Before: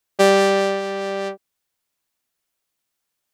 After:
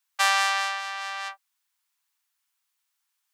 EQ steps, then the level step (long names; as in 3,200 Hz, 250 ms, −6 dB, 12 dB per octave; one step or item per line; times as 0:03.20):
Butterworth high-pass 840 Hz 48 dB per octave
0.0 dB